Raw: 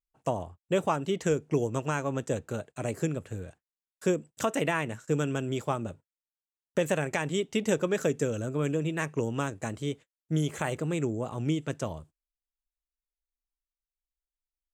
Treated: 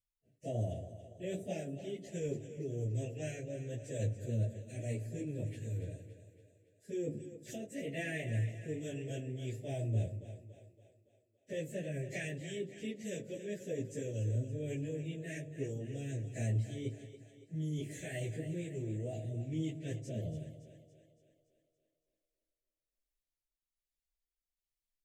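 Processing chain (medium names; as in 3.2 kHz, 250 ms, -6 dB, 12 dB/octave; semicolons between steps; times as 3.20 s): elliptic band-stop 660–1800 Hz, stop band 50 dB; reverse; compression 10:1, threshold -36 dBFS, peak gain reduction 15 dB; reverse; peaking EQ 110 Hz +14 dB 0.26 oct; plain phase-vocoder stretch 1.7×; rotary cabinet horn 1.2 Hz; de-hum 48.85 Hz, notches 28; on a send: two-band feedback delay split 320 Hz, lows 168 ms, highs 282 ms, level -11.5 dB; on the sum: trim +3.5 dB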